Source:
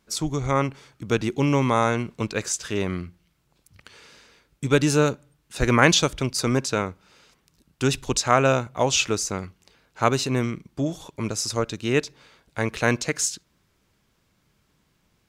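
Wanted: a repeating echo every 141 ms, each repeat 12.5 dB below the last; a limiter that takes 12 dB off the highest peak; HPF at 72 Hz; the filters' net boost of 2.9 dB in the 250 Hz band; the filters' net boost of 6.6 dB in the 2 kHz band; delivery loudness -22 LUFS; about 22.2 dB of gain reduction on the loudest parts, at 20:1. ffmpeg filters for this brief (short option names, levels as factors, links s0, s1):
-af "highpass=72,equalizer=f=250:t=o:g=3.5,equalizer=f=2000:t=o:g=8.5,acompressor=threshold=0.0398:ratio=20,alimiter=limit=0.0708:level=0:latency=1,aecho=1:1:141|282|423:0.237|0.0569|0.0137,volume=5.01"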